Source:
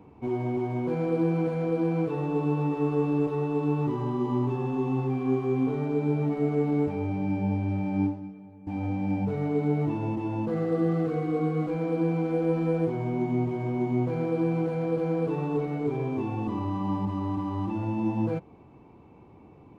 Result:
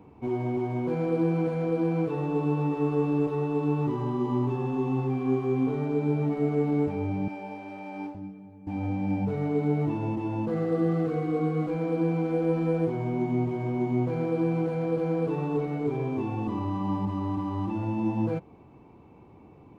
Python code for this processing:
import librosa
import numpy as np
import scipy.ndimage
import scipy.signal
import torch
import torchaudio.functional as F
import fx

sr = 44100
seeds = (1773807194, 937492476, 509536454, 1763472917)

y = fx.highpass(x, sr, hz=500.0, slope=12, at=(7.28, 8.15))